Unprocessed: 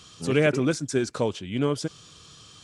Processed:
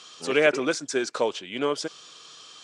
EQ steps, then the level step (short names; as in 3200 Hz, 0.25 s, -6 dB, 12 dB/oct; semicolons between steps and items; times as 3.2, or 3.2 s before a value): BPF 460–7200 Hz; +4.0 dB